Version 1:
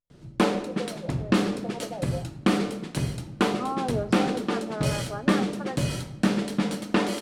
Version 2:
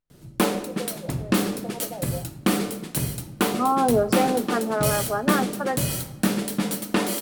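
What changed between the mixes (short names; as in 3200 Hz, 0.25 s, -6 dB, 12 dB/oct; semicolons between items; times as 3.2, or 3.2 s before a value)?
second voice +9.0 dB; master: remove air absorption 84 m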